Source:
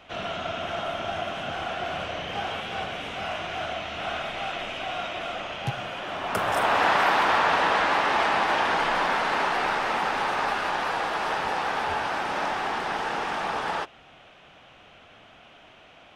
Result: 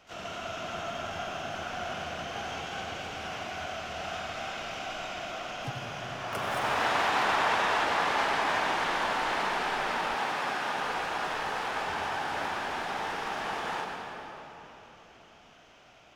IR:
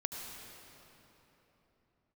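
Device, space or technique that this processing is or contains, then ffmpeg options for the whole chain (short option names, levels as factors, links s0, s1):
shimmer-style reverb: -filter_complex "[0:a]asplit=2[s0][s1];[s1]asetrate=88200,aresample=44100,atempo=0.5,volume=0.398[s2];[s0][s2]amix=inputs=2:normalize=0[s3];[1:a]atrim=start_sample=2205[s4];[s3][s4]afir=irnorm=-1:irlink=0,asettb=1/sr,asplit=3[s5][s6][s7];[s5]atrim=end=10.144[s8];[s6]atrim=start=10.14:end=10.78,asetpts=PTS-STARTPTS,afade=t=in:d=0.004:c=qsin,afade=t=out:st=0.636:d=0.004:c=qsin,highpass=100[s9];[s7]atrim=start=10.776[s10];[s8][s9]acrossfade=d=0.004:c1=hsin:c2=qsin[s11];[s11][s10]acrossfade=d=0.004:c1=qsin:c2=hsin,volume=0.447"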